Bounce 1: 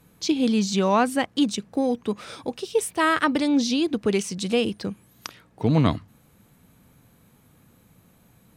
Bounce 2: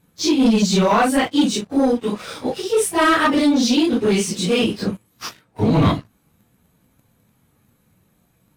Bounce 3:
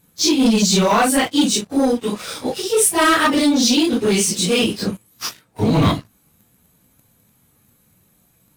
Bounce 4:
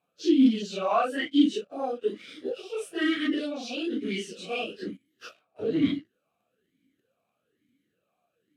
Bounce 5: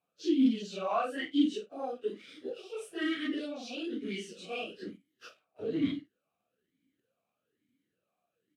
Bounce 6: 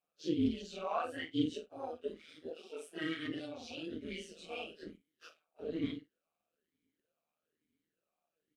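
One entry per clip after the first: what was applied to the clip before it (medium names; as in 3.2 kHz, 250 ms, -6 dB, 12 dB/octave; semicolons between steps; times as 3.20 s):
phase randomisation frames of 100 ms; waveshaping leveller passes 2
treble shelf 4.5 kHz +10.5 dB
talking filter a-i 1.1 Hz
doubling 49 ms -13.5 dB; trim -6.5 dB
bass shelf 140 Hz -8.5 dB; AM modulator 160 Hz, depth 45%; trim -2 dB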